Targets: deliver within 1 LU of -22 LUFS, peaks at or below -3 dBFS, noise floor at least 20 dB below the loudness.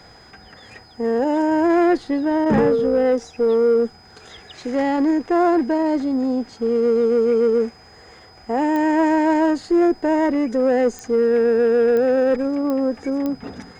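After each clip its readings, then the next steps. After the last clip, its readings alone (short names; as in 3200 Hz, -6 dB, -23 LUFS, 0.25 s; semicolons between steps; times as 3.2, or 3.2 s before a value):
clicks 5; steady tone 5000 Hz; tone level -49 dBFS; loudness -19.0 LUFS; peak -8.0 dBFS; loudness target -22.0 LUFS
-> de-click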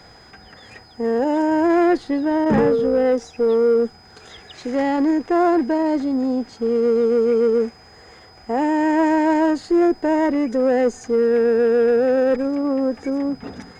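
clicks 0; steady tone 5000 Hz; tone level -49 dBFS
-> notch 5000 Hz, Q 30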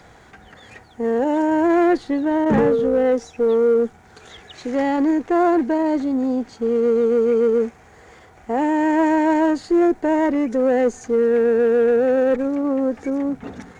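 steady tone none; loudness -19.0 LUFS; peak -10.0 dBFS; loudness target -22.0 LUFS
-> gain -3 dB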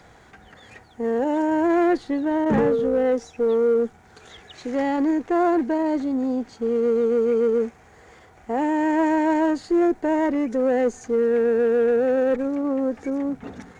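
loudness -22.0 LUFS; peak -13.0 dBFS; noise floor -51 dBFS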